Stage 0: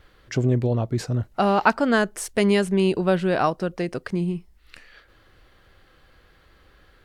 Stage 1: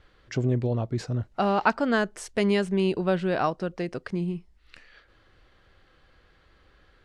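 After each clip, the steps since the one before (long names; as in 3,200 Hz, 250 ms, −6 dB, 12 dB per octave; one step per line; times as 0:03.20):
low-pass filter 7,100 Hz 12 dB per octave
level −4 dB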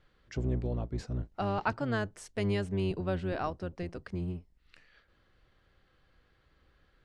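sub-octave generator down 1 octave, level 0 dB
level −9 dB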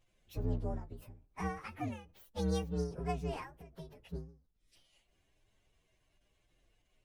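partials spread apart or drawn together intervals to 129%
every ending faded ahead of time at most 120 dB per second
level −2 dB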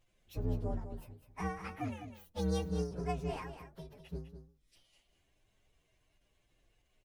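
single-tap delay 203 ms −10 dB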